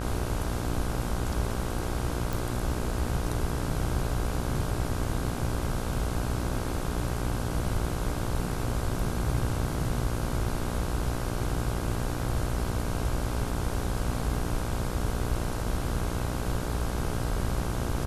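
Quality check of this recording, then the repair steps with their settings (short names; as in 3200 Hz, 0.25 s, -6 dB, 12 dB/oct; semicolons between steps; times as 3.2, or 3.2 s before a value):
buzz 60 Hz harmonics 27 -33 dBFS
2.33 pop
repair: de-click; de-hum 60 Hz, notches 27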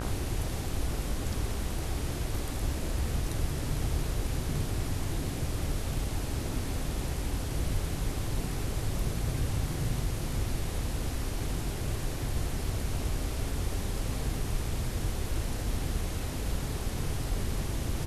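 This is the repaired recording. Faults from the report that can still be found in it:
none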